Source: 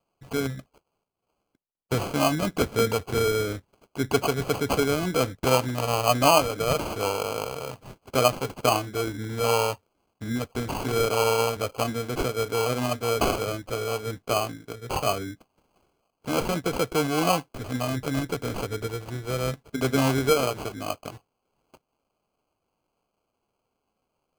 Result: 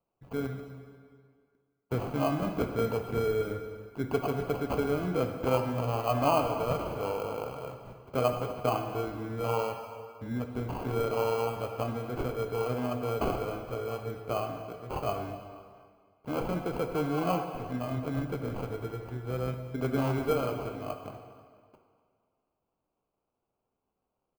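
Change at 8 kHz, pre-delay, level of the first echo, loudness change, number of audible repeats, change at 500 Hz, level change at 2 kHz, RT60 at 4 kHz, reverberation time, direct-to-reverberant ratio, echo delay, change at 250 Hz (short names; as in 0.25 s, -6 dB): -18.5 dB, 13 ms, -18.0 dB, -6.0 dB, 3, -5.0 dB, -10.5 dB, 1.6 s, 1.9 s, 4.5 dB, 0.244 s, -4.5 dB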